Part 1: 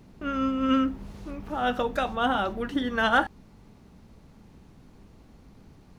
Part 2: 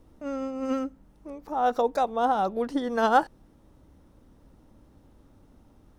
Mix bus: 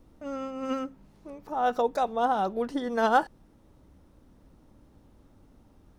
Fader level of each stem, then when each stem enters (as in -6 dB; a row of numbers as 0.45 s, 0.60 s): -16.0 dB, -1.5 dB; 0.00 s, 0.00 s